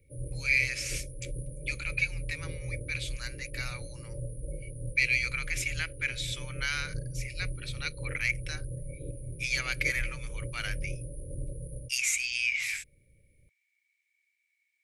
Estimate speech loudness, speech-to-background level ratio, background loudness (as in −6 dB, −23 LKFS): −31.5 LKFS, 9.5 dB, −41.0 LKFS